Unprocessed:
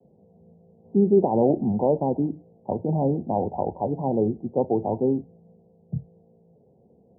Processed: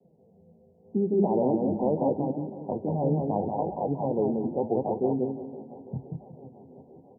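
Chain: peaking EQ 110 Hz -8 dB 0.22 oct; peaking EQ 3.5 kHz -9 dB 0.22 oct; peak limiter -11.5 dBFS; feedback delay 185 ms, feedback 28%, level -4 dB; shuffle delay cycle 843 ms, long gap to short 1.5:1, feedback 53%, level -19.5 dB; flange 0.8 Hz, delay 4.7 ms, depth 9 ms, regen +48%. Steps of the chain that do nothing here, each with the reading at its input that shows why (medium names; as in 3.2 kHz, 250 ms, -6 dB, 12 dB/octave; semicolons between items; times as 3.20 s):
peaking EQ 3.5 kHz: input has nothing above 1 kHz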